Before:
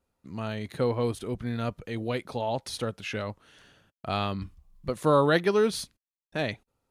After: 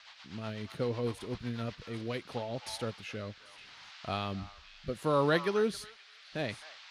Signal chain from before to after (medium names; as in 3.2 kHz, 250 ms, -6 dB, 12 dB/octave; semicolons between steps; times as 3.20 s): band noise 780–4700 Hz -47 dBFS; repeats whose band climbs or falls 263 ms, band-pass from 1.1 kHz, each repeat 1.4 oct, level -8.5 dB; rotary cabinet horn 8 Hz, later 0.75 Hz, at 1.81 s; trim -4.5 dB